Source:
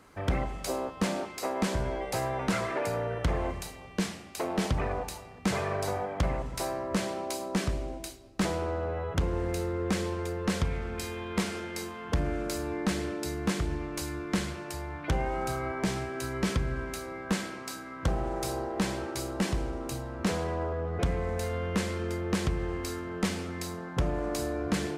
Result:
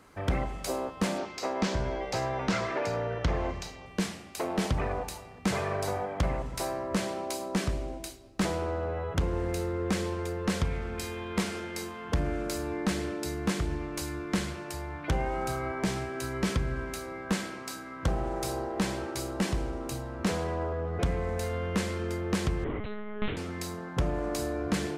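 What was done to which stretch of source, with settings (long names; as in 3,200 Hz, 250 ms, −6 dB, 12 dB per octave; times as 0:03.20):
0:01.18–0:03.86: high shelf with overshoot 7,800 Hz −10.5 dB, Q 1.5
0:22.64–0:23.37: one-pitch LPC vocoder at 8 kHz 210 Hz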